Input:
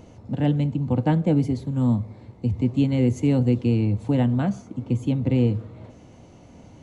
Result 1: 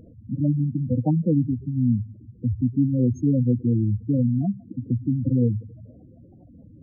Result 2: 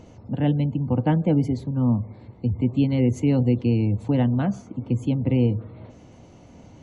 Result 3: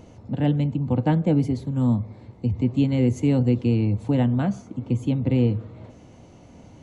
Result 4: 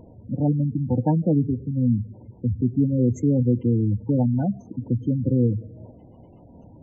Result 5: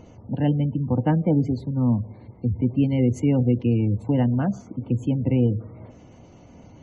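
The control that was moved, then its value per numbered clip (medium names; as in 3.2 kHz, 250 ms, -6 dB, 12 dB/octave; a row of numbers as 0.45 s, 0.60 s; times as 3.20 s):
spectral gate, under each frame's peak: -10 dB, -45 dB, -60 dB, -20 dB, -35 dB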